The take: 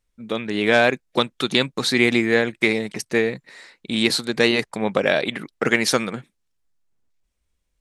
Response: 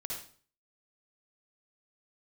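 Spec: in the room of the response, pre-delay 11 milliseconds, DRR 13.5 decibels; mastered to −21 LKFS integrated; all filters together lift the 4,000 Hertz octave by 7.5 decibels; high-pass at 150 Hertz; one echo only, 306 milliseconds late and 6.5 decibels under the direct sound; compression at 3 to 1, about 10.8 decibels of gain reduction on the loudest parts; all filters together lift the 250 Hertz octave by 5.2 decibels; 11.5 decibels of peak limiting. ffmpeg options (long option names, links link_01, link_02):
-filter_complex "[0:a]highpass=150,equalizer=frequency=250:width_type=o:gain=7,equalizer=frequency=4000:width_type=o:gain=8.5,acompressor=threshold=-24dB:ratio=3,alimiter=limit=-16.5dB:level=0:latency=1,aecho=1:1:306:0.473,asplit=2[link_01][link_02];[1:a]atrim=start_sample=2205,adelay=11[link_03];[link_02][link_03]afir=irnorm=-1:irlink=0,volume=-13.5dB[link_04];[link_01][link_04]amix=inputs=2:normalize=0,volume=7.5dB"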